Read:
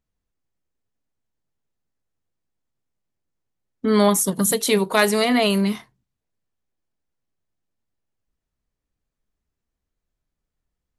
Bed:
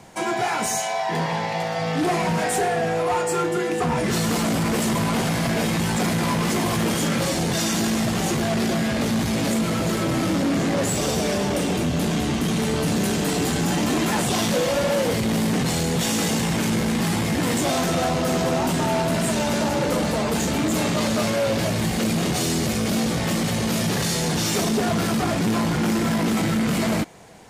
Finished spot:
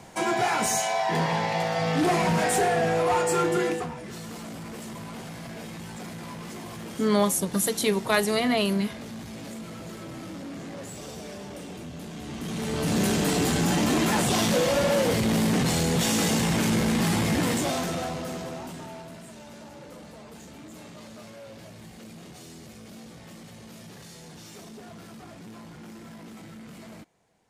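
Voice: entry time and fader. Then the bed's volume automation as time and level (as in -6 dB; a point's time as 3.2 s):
3.15 s, -5.5 dB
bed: 3.68 s -1 dB
3.96 s -16.5 dB
12.13 s -16.5 dB
13 s -1.5 dB
17.36 s -1.5 dB
19.27 s -22.5 dB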